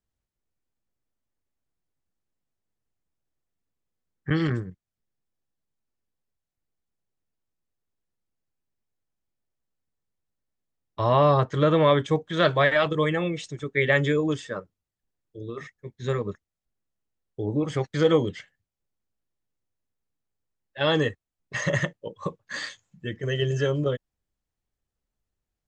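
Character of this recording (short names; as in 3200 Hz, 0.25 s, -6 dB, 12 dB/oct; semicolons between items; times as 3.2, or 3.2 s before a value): noise floor -87 dBFS; spectral tilt -5.0 dB/oct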